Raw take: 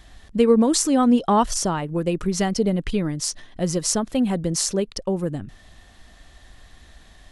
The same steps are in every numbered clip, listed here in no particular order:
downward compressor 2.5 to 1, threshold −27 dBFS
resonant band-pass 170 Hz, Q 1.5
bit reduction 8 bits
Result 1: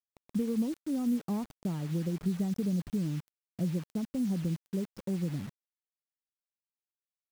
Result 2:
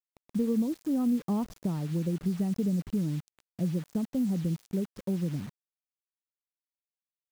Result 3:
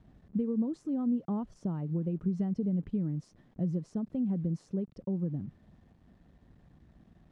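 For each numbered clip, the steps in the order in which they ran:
downward compressor, then resonant band-pass, then bit reduction
resonant band-pass, then downward compressor, then bit reduction
downward compressor, then bit reduction, then resonant band-pass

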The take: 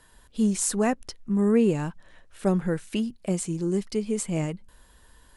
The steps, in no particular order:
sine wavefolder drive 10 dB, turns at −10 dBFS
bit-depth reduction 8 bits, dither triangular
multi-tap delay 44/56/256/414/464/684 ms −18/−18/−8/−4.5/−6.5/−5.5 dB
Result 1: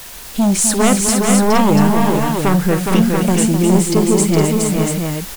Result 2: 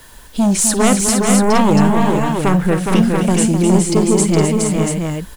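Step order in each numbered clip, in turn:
bit-depth reduction, then sine wavefolder, then multi-tap delay
sine wavefolder, then multi-tap delay, then bit-depth reduction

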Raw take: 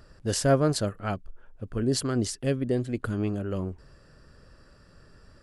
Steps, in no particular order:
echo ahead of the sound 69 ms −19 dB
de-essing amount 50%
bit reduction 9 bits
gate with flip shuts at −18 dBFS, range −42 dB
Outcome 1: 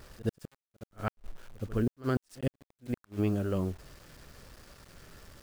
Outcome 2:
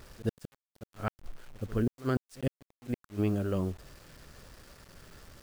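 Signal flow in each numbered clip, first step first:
de-essing, then gate with flip, then bit reduction, then echo ahead of the sound
de-essing, then gate with flip, then echo ahead of the sound, then bit reduction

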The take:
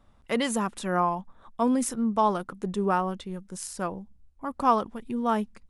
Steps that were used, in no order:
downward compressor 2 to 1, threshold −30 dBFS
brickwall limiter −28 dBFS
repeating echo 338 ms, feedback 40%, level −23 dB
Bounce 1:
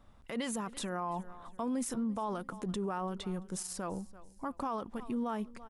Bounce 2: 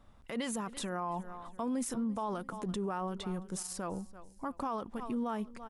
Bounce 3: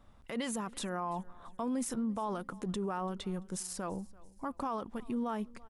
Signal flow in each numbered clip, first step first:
downward compressor, then repeating echo, then brickwall limiter
repeating echo, then downward compressor, then brickwall limiter
downward compressor, then brickwall limiter, then repeating echo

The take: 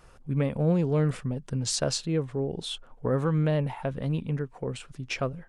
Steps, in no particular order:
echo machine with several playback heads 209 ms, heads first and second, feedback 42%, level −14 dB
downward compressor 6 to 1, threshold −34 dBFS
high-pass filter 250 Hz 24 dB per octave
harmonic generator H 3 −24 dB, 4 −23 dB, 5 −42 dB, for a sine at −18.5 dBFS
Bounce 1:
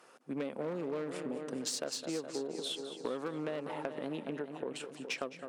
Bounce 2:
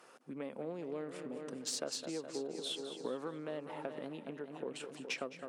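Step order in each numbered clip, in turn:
echo machine with several playback heads, then harmonic generator, then high-pass filter, then downward compressor
echo machine with several playback heads, then downward compressor, then harmonic generator, then high-pass filter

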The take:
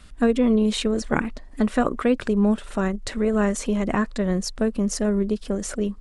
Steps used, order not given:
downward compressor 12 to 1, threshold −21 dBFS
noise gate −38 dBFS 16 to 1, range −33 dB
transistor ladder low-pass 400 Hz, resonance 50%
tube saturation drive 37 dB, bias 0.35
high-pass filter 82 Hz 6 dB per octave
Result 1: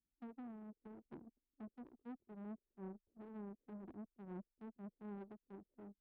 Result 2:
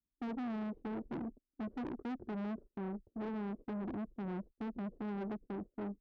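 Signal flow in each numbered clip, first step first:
downward compressor, then transistor ladder low-pass, then tube saturation, then noise gate, then high-pass filter
transistor ladder low-pass, then noise gate, then downward compressor, then tube saturation, then high-pass filter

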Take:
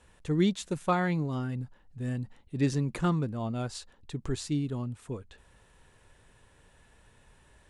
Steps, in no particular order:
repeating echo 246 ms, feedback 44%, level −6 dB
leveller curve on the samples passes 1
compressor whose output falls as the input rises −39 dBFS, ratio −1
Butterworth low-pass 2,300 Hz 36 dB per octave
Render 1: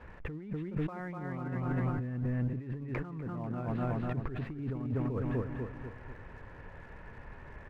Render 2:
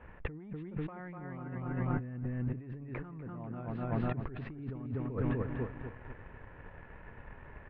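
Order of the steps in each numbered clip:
repeating echo, then compressor whose output falls as the input rises, then Butterworth low-pass, then leveller curve on the samples
repeating echo, then leveller curve on the samples, then compressor whose output falls as the input rises, then Butterworth low-pass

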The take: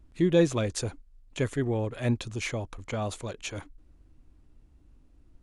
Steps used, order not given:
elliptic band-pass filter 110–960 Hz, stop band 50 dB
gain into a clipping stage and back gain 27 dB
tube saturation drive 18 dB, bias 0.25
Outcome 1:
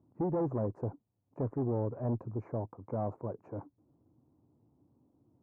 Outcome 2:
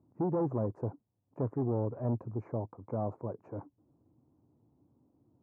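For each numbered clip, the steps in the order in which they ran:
gain into a clipping stage and back, then elliptic band-pass filter, then tube saturation
tube saturation, then gain into a clipping stage and back, then elliptic band-pass filter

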